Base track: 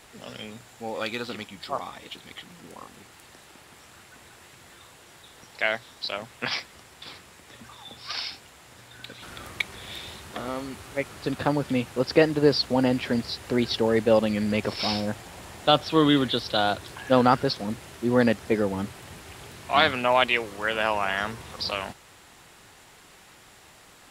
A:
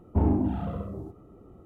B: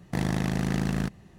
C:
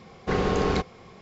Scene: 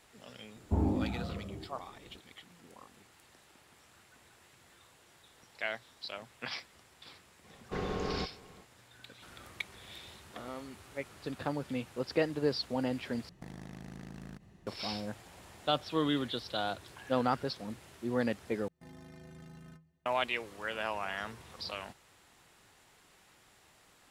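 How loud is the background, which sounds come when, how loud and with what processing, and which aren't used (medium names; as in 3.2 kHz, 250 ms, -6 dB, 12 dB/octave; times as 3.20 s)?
base track -11 dB
0.56 s: add A -6.5 dB
7.44 s: add C -11.5 dB + delay 365 ms -22.5 dB
13.29 s: replace with B -7 dB + compression 10:1, threshold -35 dBFS
18.68 s: replace with B -14.5 dB + inharmonic resonator 76 Hz, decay 0.38 s, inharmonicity 0.03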